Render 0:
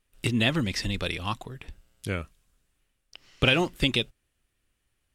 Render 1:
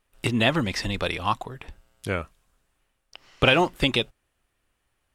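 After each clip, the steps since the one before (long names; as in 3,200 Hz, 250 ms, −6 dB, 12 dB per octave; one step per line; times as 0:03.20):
parametric band 870 Hz +9 dB 1.9 octaves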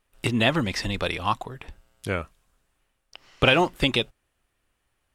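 no processing that can be heard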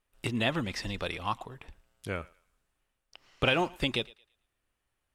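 feedback echo with a high-pass in the loop 112 ms, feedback 30%, high-pass 560 Hz, level −21.5 dB
level −7.5 dB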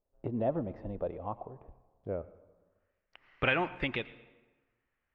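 low-pass filter sweep 610 Hz → 2,000 Hz, 0:02.29–0:02.98
convolution reverb RT60 1.3 s, pre-delay 81 ms, DRR 17.5 dB
level −4 dB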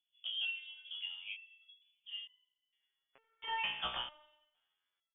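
repeating echo 88 ms, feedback 49%, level −11.5 dB
voice inversion scrambler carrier 3,400 Hz
step-sequenced resonator 2.2 Hz 61–1,000 Hz
level +2 dB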